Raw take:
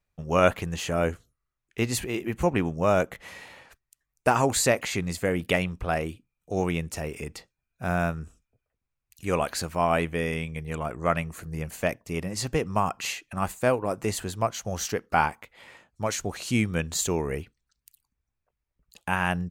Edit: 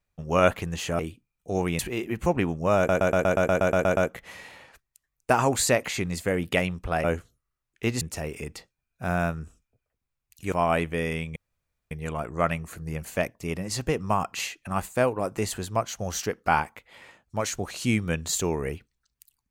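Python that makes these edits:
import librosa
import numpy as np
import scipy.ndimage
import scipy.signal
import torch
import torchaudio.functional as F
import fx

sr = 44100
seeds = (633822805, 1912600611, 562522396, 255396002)

y = fx.edit(x, sr, fx.swap(start_s=0.99, length_s=0.97, other_s=6.01, other_length_s=0.8),
    fx.stutter(start_s=2.94, slice_s=0.12, count=11),
    fx.cut(start_s=9.32, length_s=0.41),
    fx.insert_room_tone(at_s=10.57, length_s=0.55), tone=tone)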